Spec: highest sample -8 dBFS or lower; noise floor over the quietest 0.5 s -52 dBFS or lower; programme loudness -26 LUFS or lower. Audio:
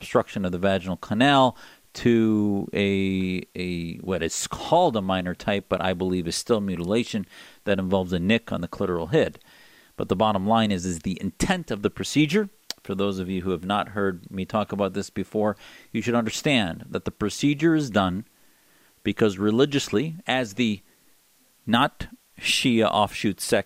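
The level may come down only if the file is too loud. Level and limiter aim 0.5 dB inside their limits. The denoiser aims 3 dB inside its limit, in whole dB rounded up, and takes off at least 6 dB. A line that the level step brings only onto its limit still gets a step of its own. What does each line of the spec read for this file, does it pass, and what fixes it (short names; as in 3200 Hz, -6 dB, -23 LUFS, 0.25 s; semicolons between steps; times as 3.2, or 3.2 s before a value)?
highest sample -7.0 dBFS: fail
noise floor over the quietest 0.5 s -61 dBFS: OK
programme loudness -24.5 LUFS: fail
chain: gain -2 dB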